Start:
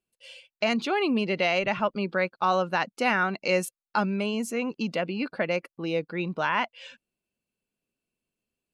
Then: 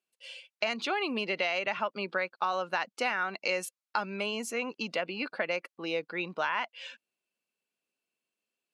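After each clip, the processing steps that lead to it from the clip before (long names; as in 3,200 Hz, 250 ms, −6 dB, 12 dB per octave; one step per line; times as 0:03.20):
meter weighting curve A
downward compressor, threshold −26 dBFS, peak gain reduction 7.5 dB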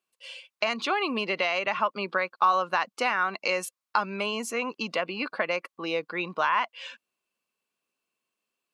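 parametric band 1,100 Hz +9 dB 0.32 octaves
level +3 dB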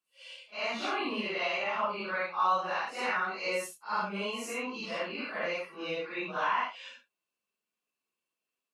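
random phases in long frames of 200 ms
level −5 dB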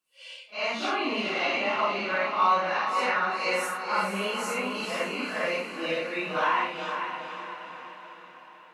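feedback delay with all-pass diffusion 487 ms, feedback 52%, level −6.5 dB
convolution reverb RT60 0.50 s, pre-delay 6 ms, DRR 12.5 dB
level +4 dB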